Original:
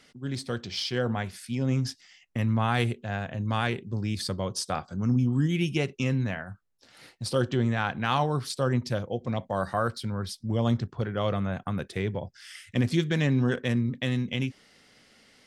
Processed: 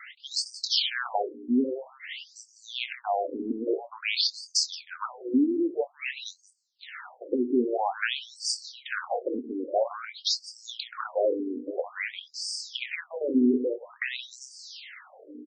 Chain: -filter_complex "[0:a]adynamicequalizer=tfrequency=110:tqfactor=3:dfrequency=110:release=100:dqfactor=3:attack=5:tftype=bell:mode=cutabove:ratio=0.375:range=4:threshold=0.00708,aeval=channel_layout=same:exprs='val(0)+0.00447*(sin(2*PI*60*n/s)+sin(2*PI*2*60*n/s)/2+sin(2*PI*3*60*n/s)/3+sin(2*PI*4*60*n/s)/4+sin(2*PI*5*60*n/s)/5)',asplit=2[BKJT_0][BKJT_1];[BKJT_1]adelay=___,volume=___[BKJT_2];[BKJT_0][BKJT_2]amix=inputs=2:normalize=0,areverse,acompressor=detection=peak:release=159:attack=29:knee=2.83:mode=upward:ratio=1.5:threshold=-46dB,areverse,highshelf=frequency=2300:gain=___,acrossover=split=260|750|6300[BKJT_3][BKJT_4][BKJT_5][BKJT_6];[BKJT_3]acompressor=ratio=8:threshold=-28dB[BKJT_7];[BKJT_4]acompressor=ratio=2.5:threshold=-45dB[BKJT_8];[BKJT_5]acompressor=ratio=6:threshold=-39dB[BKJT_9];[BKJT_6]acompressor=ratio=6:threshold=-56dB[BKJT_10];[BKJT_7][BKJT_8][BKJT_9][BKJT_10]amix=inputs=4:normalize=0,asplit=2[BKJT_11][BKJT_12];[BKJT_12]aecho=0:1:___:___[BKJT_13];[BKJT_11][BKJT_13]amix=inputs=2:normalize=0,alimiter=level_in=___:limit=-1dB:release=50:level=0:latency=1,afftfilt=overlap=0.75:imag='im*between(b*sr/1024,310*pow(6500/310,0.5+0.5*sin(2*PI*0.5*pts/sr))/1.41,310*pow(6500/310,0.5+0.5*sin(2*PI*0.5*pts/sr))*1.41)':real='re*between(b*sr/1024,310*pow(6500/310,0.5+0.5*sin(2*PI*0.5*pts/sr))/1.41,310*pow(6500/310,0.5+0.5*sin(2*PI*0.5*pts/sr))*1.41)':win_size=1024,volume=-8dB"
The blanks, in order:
24, -9dB, 3.5, 173, 0.188, 24dB